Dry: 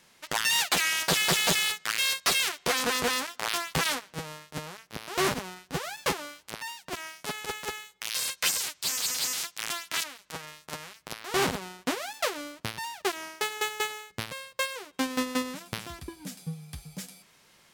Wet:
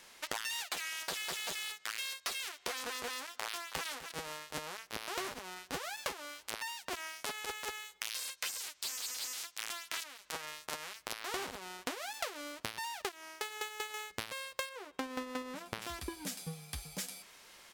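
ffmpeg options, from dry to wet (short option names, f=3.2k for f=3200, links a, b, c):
-filter_complex "[0:a]asplit=2[a][b];[b]afade=t=in:st=3.46:d=0.01,afade=t=out:st=3.86:d=0.01,aecho=0:1:250|500|750:0.199526|0.0498816|0.0124704[c];[a][c]amix=inputs=2:normalize=0,asettb=1/sr,asplit=3[d][e][f];[d]atrim=end=14.694[g];[e]atrim=start=14.69:end=15.82,asetpts=PTS-STARTPTS,afade=t=in:d=0.004:c=qsin,afade=t=out:st=1.126:d=0.004:c=qsin,highshelf=f=2.4k:g=-11[h];[f]atrim=start=15.816[i];[g][h]acrossfade=d=0.004:c1=hsin:c2=qsin[j];[j][i]acrossfade=d=0.004:c1=qsin:c2=hsin,asplit=3[k][l][m];[k]atrim=end=13.092[n];[l]atrim=start=13.088:end=13.942,asetpts=PTS-STARTPTS,volume=-7dB[o];[m]atrim=start=13.938[p];[n][o]acrossfade=d=0.004:c1=hsin:c2=hsin[q];[q][p]acrossfade=d=0.004:c1=hsin:c2=hsin,equalizer=f=140:t=o:w=1.6:g=-12,acompressor=threshold=-38dB:ratio=12,volume=3.5dB"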